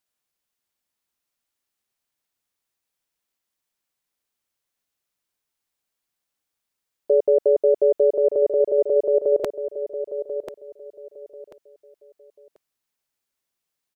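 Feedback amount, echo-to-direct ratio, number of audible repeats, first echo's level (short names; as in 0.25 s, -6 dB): 25%, -9.5 dB, 3, -10.0 dB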